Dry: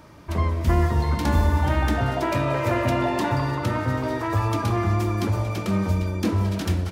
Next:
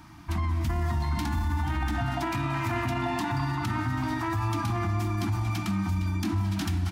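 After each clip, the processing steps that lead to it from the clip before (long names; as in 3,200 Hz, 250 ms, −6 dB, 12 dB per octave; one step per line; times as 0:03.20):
elliptic band-stop filter 330–710 Hz, stop band 40 dB
brickwall limiter −20.5 dBFS, peak gain reduction 10 dB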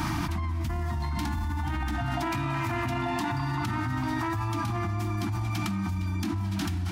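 envelope flattener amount 100%
level −4.5 dB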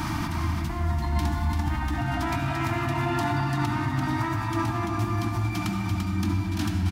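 single-tap delay 341 ms −4.5 dB
convolution reverb RT60 2.2 s, pre-delay 62 ms, DRR 4 dB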